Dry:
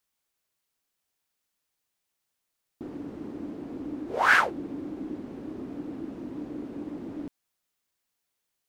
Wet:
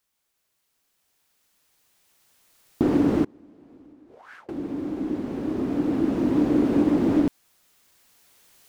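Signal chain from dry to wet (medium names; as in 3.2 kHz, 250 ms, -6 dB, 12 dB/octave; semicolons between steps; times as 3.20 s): recorder AGC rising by 6.5 dB/s; 3.22–4.49 s: inverted gate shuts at -20 dBFS, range -31 dB; trim +3.5 dB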